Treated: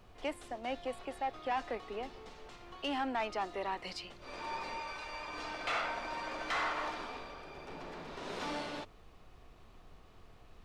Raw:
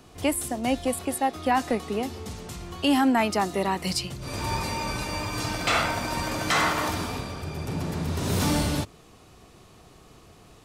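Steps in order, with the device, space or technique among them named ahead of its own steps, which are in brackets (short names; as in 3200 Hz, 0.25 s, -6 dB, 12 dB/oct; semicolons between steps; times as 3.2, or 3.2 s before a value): 4.8–5.28 low shelf 380 Hz -11 dB; aircraft cabin announcement (BPF 440–3400 Hz; soft clip -19.5 dBFS, distortion -16 dB; brown noise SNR 15 dB); gain -8 dB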